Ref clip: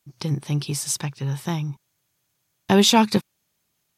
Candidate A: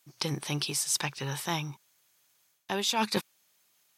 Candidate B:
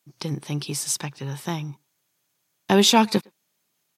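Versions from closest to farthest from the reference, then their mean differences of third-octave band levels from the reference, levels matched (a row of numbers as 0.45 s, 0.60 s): B, A; 2.0 dB, 8.0 dB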